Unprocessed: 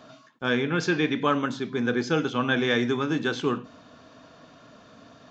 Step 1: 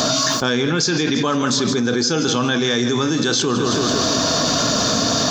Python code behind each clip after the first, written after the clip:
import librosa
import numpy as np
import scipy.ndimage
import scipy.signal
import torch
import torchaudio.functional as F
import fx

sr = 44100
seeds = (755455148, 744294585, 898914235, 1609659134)

y = fx.high_shelf_res(x, sr, hz=3600.0, db=12.0, q=1.5)
y = fx.echo_feedback(y, sr, ms=165, feedback_pct=47, wet_db=-14.5)
y = fx.env_flatten(y, sr, amount_pct=100)
y = y * 10.0 ** (1.5 / 20.0)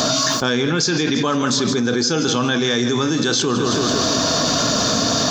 y = x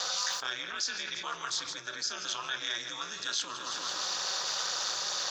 y = scipy.signal.sosfilt(scipy.signal.butter(2, 1200.0, 'highpass', fs=sr, output='sos'), x)
y = fx.high_shelf(y, sr, hz=6400.0, db=-4.0)
y = y * np.sin(2.0 * np.pi * 110.0 * np.arange(len(y)) / sr)
y = y * 10.0 ** (-8.0 / 20.0)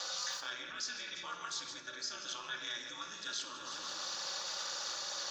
y = fx.room_shoebox(x, sr, seeds[0], volume_m3=3700.0, walls='furnished', distance_m=2.4)
y = y * 10.0 ** (-8.5 / 20.0)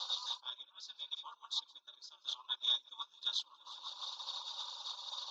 y = fx.double_bandpass(x, sr, hz=1900.0, octaves=1.9)
y = fx.dereverb_blind(y, sr, rt60_s=0.6)
y = fx.upward_expand(y, sr, threshold_db=-59.0, expansion=2.5)
y = y * 10.0 ** (15.0 / 20.0)